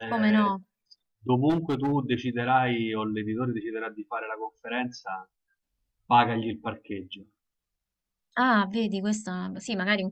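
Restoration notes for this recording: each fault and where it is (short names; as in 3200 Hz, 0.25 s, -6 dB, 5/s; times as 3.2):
1.49–1.93 clipped -21.5 dBFS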